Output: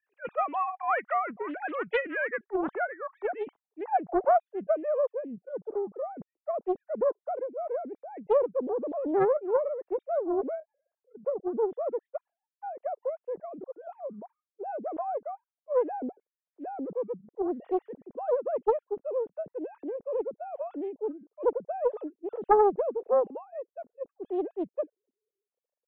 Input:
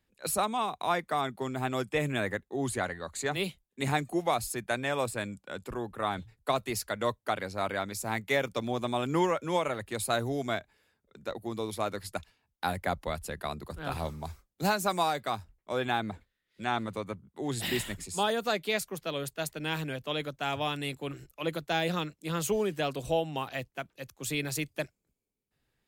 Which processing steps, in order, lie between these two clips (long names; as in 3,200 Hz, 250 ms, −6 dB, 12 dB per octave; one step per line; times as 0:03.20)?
three sine waves on the formant tracks
low-pass filter sweep 1,800 Hz → 480 Hz, 0:01.88–0:05.31
highs frequency-modulated by the lows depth 0.65 ms
level −1 dB